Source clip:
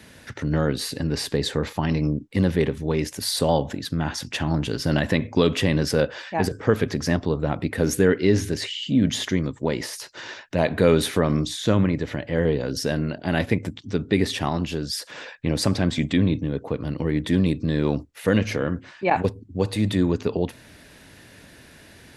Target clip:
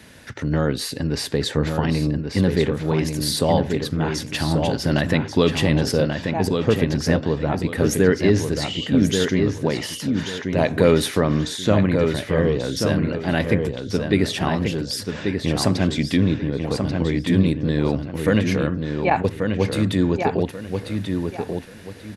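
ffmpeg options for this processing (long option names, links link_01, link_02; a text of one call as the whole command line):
ffmpeg -i in.wav -filter_complex "[0:a]asettb=1/sr,asplit=3[link_01][link_02][link_03];[link_01]atrim=end=5.924[link_04];[link_02]atrim=start=5.92:end=7,asetpts=PTS-STARTPTS,afade=type=in:duration=0.004:curve=qsin,afade=type=out:start_time=1.076:duration=0.004:curve=qsin,equalizer=frequency=1600:width_type=o:width=1.4:gain=-6.5[link_05];[link_03]atrim=start=6.996[link_06];[link_04][link_05]acrossfade=duration=0.004:curve1=hsin:curve2=qsin[link_07];[link_07][link_06]acrossfade=duration=0.004:curve1=qsin:curve2=hsin,asplit=2[link_08][link_09];[link_09]adelay=1136,lowpass=frequency=4500:poles=1,volume=-5dB,asplit=2[link_10][link_11];[link_11]adelay=1136,lowpass=frequency=4500:poles=1,volume=0.29,asplit=2[link_12][link_13];[link_13]adelay=1136,lowpass=frequency=4500:poles=1,volume=0.29,asplit=2[link_14][link_15];[link_15]adelay=1136,lowpass=frequency=4500:poles=1,volume=0.29[link_16];[link_10][link_12][link_14][link_16]amix=inputs=4:normalize=0[link_17];[link_08][link_17]amix=inputs=2:normalize=0,volume=1.5dB" out.wav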